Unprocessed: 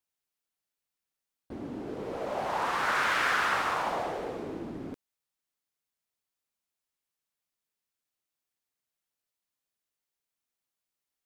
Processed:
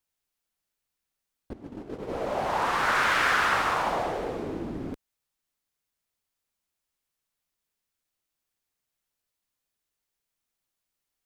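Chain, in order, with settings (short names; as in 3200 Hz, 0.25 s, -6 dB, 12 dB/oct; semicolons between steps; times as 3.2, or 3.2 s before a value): 1.53–2.1 gate -36 dBFS, range -14 dB; low shelf 72 Hz +10.5 dB; gain +3.5 dB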